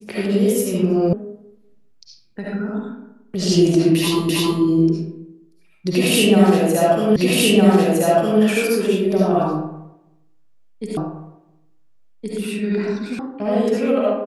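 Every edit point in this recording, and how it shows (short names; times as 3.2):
1.13 sound cut off
4.29 repeat of the last 0.32 s
7.16 repeat of the last 1.26 s
10.97 repeat of the last 1.42 s
13.19 sound cut off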